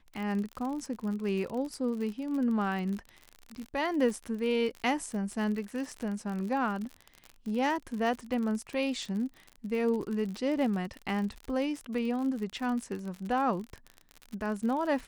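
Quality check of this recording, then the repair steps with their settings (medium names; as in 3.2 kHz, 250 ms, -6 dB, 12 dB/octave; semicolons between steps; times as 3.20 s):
crackle 52 per s -35 dBFS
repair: de-click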